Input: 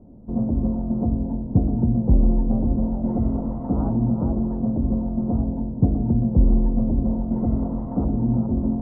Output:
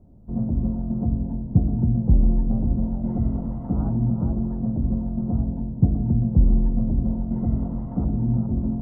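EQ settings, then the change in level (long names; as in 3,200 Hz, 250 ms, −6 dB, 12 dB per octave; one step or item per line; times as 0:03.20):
low-shelf EQ 150 Hz −3 dB
dynamic equaliser 200 Hz, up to +6 dB, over −35 dBFS, Q 1
graphic EQ with 10 bands 250 Hz −10 dB, 500 Hz −8 dB, 1,000 Hz −7 dB
+2.5 dB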